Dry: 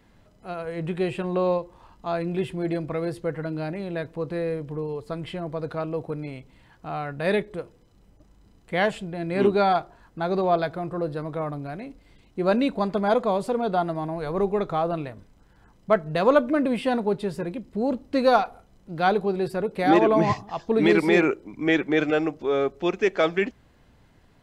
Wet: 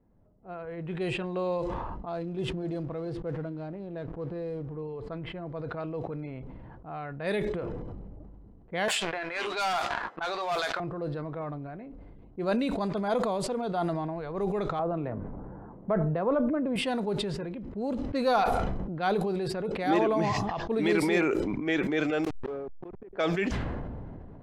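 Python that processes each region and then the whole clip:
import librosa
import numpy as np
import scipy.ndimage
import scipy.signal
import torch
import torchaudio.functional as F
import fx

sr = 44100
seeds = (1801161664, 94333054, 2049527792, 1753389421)

y = fx.chain(x, sr, fx.peak_eq(hz=2100.0, db=-10.0, octaves=1.1),
    fx.backlash(play_db=-45.5), at=(2.09, 4.75))
y = fx.chain(y, sr, fx.highpass(hz=1200.0, slope=12),
    fx.leveller(passes=3),
    fx.doubler(ms=14.0, db=-13.0), at=(8.88, 10.8))
y = fx.chain(y, sr, fx.lowpass(hz=1200.0, slope=12),
    fx.band_squash(depth_pct=70), at=(14.79, 16.76))
y = fx.chain(y, sr, fx.delta_hold(step_db=-27.0),
    fx.high_shelf(hz=4800.0, db=-10.5),
    fx.gate_flip(shuts_db=-21.0, range_db=-32), at=(22.24, 23.13))
y = fx.env_lowpass(y, sr, base_hz=650.0, full_db=-19.5)
y = fx.high_shelf(y, sr, hz=4900.0, db=4.5)
y = fx.sustainer(y, sr, db_per_s=21.0)
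y = y * 10.0 ** (-7.5 / 20.0)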